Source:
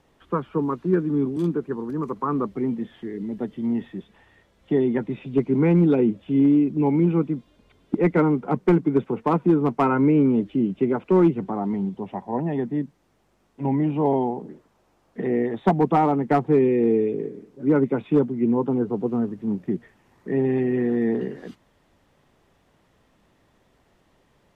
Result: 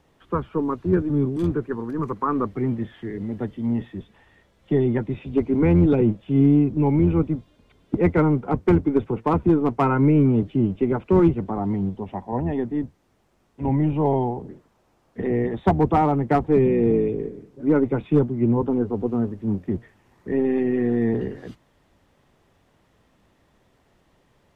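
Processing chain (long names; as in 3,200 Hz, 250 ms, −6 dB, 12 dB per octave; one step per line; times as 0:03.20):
sub-octave generator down 1 octave, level −5 dB
0:01.36–0:03.52: parametric band 1,700 Hz +5 dB 1.2 octaves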